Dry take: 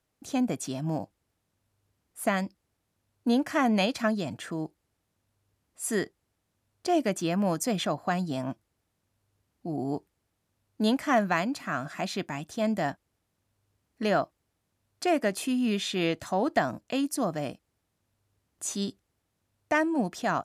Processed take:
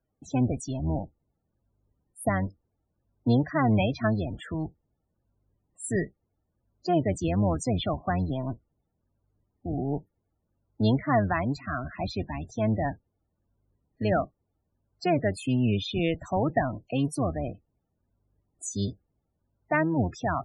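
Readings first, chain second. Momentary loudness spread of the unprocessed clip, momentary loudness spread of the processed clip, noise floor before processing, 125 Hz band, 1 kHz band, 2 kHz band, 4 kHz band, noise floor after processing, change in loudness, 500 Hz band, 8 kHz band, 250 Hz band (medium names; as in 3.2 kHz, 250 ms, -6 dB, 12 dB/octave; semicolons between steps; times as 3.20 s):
11 LU, 11 LU, -79 dBFS, +8.5 dB, -0.5 dB, -2.0 dB, -4.0 dB, -79 dBFS, +1.0 dB, 0.0 dB, -4.0 dB, +0.5 dB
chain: octave divider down 1 oct, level 0 dB; loudest bins only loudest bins 32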